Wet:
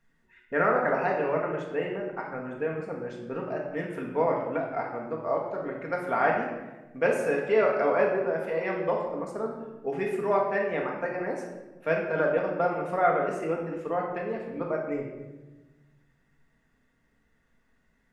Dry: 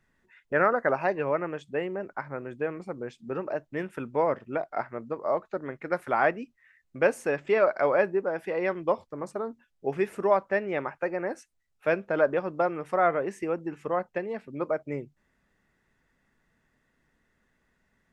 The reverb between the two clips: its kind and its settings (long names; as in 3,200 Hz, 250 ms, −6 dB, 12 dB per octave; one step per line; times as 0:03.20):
rectangular room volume 650 cubic metres, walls mixed, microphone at 1.7 metres
level −3.5 dB